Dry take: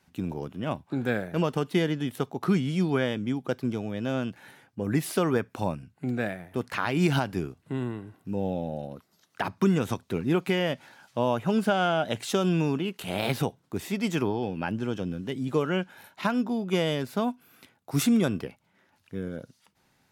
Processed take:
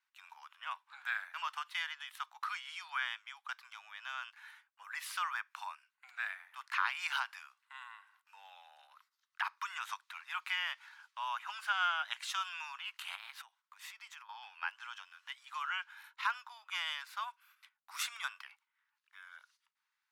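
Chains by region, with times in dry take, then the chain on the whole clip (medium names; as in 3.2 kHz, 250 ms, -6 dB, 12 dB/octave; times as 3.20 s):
13.15–14.29 s: compression 8:1, threshold -36 dBFS + bass shelf 130 Hz +8.5 dB
whole clip: gate -53 dBFS, range -12 dB; steep high-pass 1 kHz 48 dB/octave; treble shelf 5.3 kHz -11.5 dB; trim -1 dB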